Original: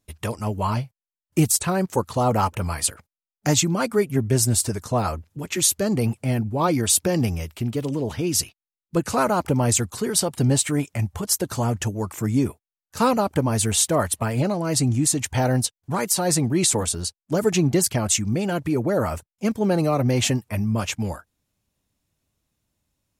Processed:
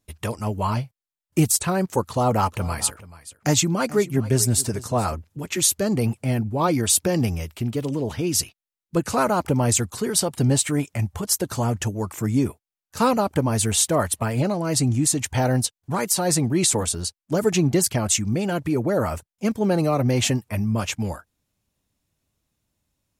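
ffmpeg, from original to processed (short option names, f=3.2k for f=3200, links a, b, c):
-filter_complex "[0:a]asettb=1/sr,asplit=3[a][b][c];[a]atrim=end=2.044[d];[b]atrim=start=2.04:end=5.15,asetpts=PTS-STARTPTS,afade=t=in:d=0.004:c=qsin,afade=t=out:st=3.106:d=0.004:c=qsin,aecho=1:1:432:0.126,atrim=end_sample=137151[e];[c]atrim=start=5.146[f];[d][e]acrossfade=d=0.004:c1=hsin:c2=qsin[g];[g][f]acrossfade=d=0.004:c1=qsin:c2=hsin"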